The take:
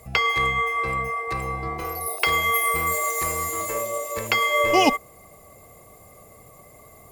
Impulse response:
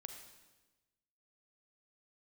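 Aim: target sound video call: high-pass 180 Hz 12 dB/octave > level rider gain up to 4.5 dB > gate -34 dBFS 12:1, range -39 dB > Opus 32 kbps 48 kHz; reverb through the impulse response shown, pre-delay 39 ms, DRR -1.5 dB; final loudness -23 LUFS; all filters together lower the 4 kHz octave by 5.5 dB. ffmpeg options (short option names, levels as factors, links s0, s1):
-filter_complex "[0:a]equalizer=f=4000:t=o:g=-8,asplit=2[s0][s1];[1:a]atrim=start_sample=2205,adelay=39[s2];[s1][s2]afir=irnorm=-1:irlink=0,volume=2[s3];[s0][s3]amix=inputs=2:normalize=0,highpass=180,dynaudnorm=m=1.68,agate=range=0.0112:threshold=0.02:ratio=12,volume=0.891" -ar 48000 -c:a libopus -b:a 32k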